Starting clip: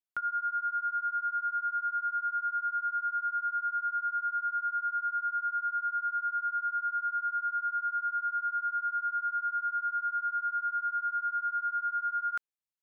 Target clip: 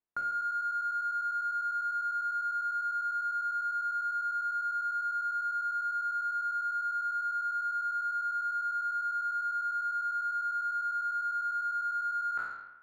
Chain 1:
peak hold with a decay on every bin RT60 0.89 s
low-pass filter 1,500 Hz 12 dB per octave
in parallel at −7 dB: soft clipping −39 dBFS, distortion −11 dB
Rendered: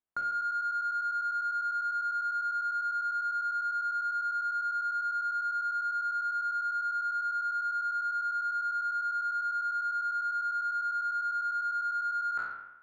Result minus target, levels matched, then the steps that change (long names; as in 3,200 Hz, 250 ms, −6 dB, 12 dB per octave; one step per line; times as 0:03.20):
soft clipping: distortion −4 dB
change: soft clipping −47.5 dBFS, distortion −7 dB